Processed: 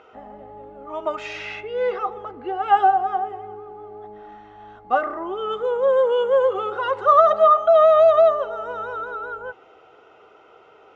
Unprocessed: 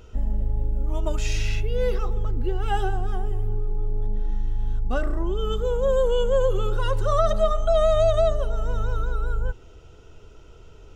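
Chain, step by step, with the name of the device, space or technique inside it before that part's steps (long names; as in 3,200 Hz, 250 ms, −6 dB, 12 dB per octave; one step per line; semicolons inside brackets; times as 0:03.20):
tin-can telephone (band-pass filter 550–2,000 Hz; hollow resonant body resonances 770/1,200/2,100 Hz, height 14 dB, ringing for 100 ms)
level +7.5 dB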